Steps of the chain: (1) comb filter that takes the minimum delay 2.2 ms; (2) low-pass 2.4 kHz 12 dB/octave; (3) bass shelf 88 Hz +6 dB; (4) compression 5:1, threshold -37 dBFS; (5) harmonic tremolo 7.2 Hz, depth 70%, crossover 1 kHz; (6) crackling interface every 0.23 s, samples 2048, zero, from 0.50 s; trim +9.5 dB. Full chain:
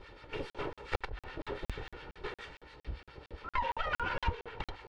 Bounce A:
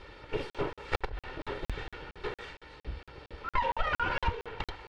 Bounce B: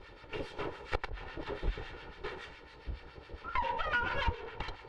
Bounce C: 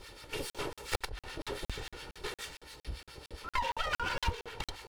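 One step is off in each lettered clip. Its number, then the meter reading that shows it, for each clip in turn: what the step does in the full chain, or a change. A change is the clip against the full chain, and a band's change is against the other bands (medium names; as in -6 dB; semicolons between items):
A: 5, loudness change +4.0 LU; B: 6, 2 kHz band +1.5 dB; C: 2, 4 kHz band +7.0 dB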